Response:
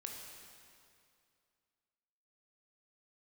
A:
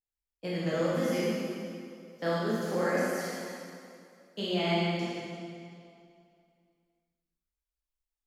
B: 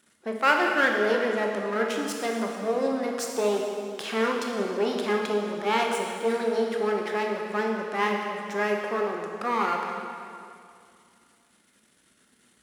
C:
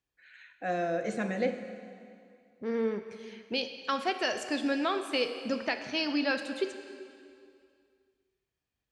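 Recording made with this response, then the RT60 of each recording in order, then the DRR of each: B; 2.4, 2.4, 2.4 s; -8.5, 0.5, 7.5 dB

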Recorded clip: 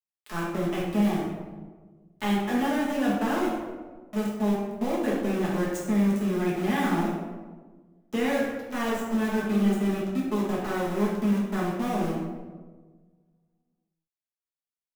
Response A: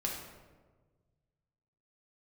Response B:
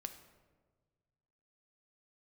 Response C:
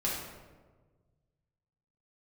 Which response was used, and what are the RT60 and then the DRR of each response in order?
C; 1.4, 1.5, 1.4 s; -2.5, 7.0, -6.5 dB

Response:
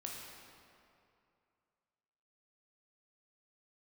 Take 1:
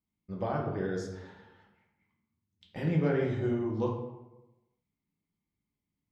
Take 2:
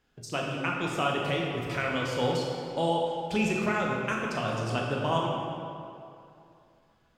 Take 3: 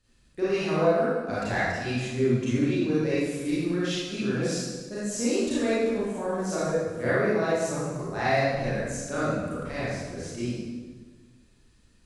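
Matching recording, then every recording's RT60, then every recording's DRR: 2; 1.0, 2.6, 1.4 s; -2.5, -2.0, -11.0 dB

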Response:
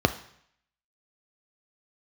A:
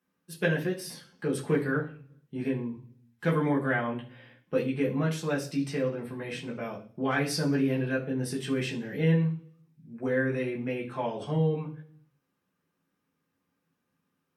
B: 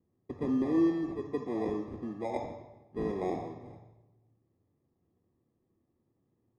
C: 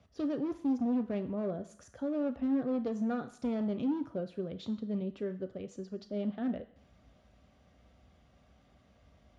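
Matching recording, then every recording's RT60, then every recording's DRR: C; 0.45, 1.1, 0.65 s; -4.0, 4.0, 8.5 dB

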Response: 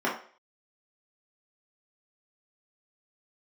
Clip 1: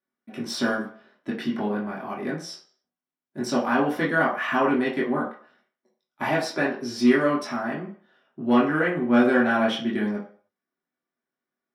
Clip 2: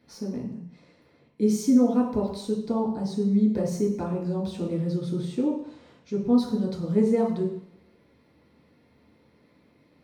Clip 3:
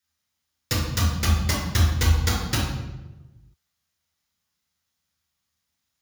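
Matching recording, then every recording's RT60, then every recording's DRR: 1; 0.45, 0.70, 1.1 s; -6.5, -5.5, -5.0 dB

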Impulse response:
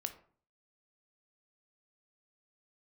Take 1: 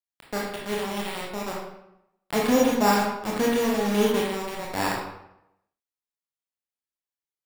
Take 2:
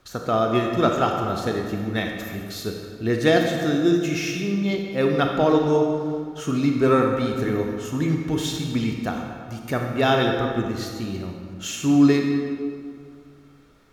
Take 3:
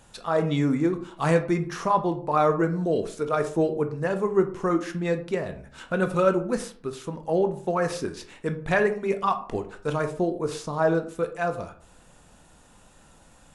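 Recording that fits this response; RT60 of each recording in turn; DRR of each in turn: 3; 0.80, 2.1, 0.45 s; -3.5, 1.5, 7.5 dB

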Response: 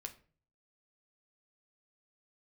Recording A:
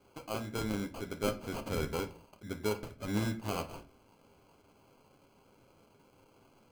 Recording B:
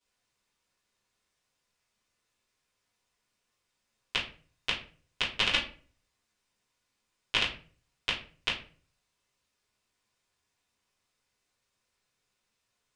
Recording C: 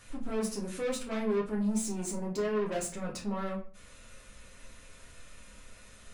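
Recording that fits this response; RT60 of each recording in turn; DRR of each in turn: A; 0.45, 0.40, 0.40 s; 5.5, -12.0, -3.0 dB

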